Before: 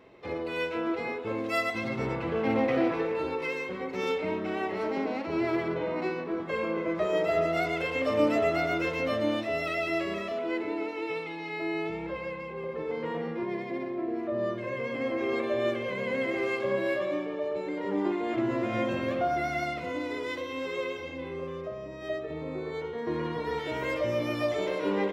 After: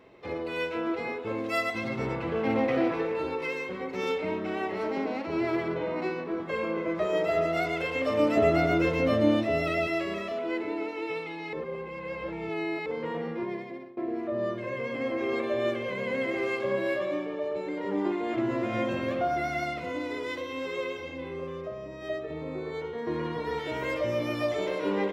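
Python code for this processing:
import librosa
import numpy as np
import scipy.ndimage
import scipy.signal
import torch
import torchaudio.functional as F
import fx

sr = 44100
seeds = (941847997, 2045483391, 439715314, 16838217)

y = fx.low_shelf(x, sr, hz=460.0, db=9.5, at=(8.37, 9.87))
y = fx.edit(y, sr, fx.reverse_span(start_s=11.53, length_s=1.33),
    fx.fade_out_to(start_s=13.44, length_s=0.53, floor_db=-19.5), tone=tone)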